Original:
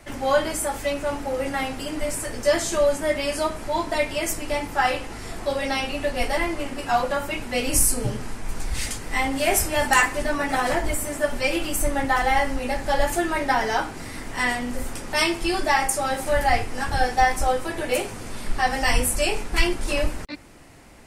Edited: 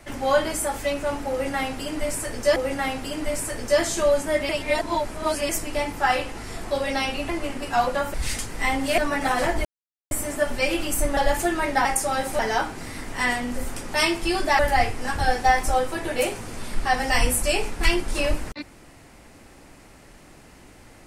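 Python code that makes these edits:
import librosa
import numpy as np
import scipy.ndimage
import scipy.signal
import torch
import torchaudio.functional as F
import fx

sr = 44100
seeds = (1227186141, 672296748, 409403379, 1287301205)

y = fx.edit(x, sr, fx.repeat(start_s=1.31, length_s=1.25, count=2),
    fx.reverse_span(start_s=3.24, length_s=1.0),
    fx.cut(start_s=6.04, length_s=0.41),
    fx.cut(start_s=7.3, length_s=1.36),
    fx.cut(start_s=9.5, length_s=0.76),
    fx.insert_silence(at_s=10.93, length_s=0.46),
    fx.cut(start_s=11.99, length_s=0.91),
    fx.move(start_s=15.78, length_s=0.54, to_s=13.58), tone=tone)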